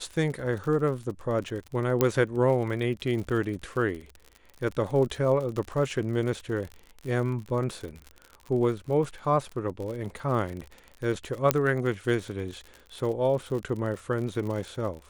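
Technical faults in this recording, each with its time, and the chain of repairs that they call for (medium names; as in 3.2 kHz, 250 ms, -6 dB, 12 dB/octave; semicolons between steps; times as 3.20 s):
crackle 58 per s -34 dBFS
2.01 s: pop -8 dBFS
11.51 s: pop -4 dBFS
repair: de-click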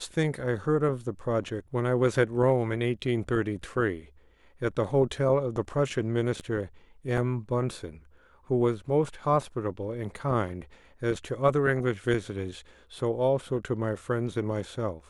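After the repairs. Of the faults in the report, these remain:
nothing left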